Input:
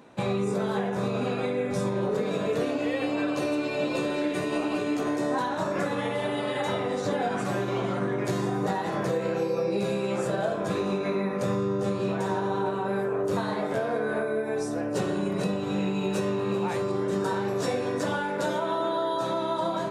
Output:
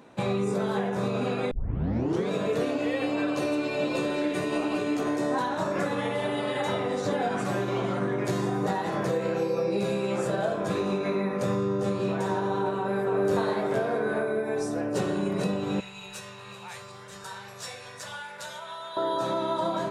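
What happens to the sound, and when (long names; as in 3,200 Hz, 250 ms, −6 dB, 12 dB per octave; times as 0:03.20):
0:01.51: tape start 0.78 s
0:12.77–0:13.24: delay throw 290 ms, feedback 65%, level −4 dB
0:15.80–0:18.97: guitar amp tone stack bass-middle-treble 10-0-10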